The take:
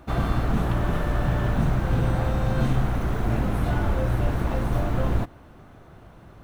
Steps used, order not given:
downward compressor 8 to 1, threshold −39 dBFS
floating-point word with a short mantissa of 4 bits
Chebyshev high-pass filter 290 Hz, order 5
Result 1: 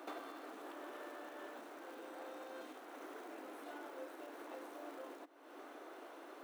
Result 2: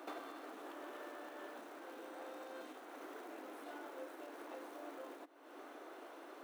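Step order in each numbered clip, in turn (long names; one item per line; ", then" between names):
downward compressor, then floating-point word with a short mantissa, then Chebyshev high-pass filter
floating-point word with a short mantissa, then downward compressor, then Chebyshev high-pass filter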